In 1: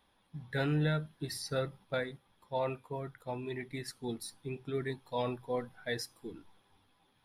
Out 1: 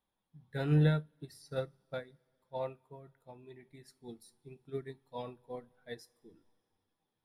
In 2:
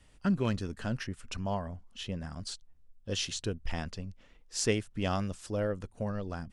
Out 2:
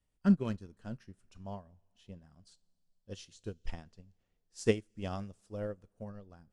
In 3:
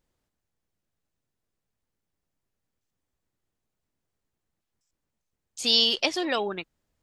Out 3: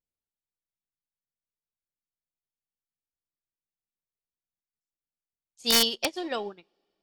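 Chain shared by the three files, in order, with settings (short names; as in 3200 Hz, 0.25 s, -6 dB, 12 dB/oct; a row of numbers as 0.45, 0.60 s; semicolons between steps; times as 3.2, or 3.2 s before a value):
bell 2300 Hz -5 dB 2.3 oct; two-slope reverb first 0.21 s, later 3.1 s, from -21 dB, DRR 14.5 dB; wrapped overs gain 12.5 dB; upward expander 2.5:1, over -39 dBFS; gain +4 dB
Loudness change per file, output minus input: +1.0, -2.0, -1.5 LU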